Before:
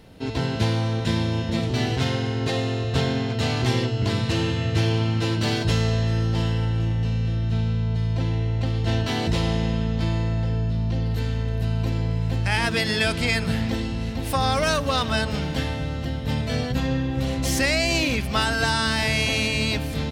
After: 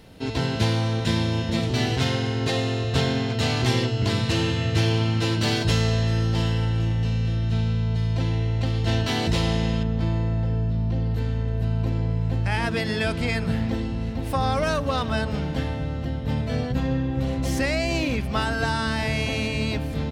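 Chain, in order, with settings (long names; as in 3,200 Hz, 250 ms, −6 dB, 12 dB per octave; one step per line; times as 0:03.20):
high-shelf EQ 2,000 Hz +2.5 dB, from 0:09.83 −9 dB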